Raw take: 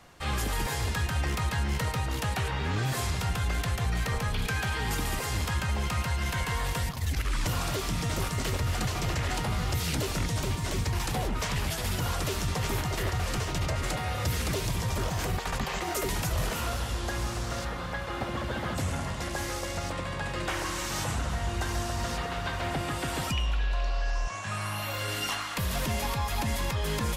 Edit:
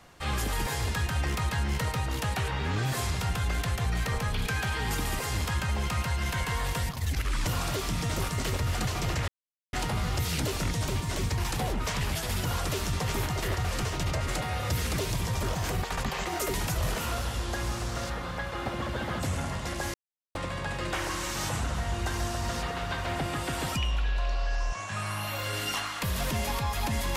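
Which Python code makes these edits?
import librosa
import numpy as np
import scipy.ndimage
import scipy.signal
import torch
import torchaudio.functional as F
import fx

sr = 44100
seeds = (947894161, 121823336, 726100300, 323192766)

y = fx.edit(x, sr, fx.insert_silence(at_s=9.28, length_s=0.45),
    fx.silence(start_s=19.49, length_s=0.41), tone=tone)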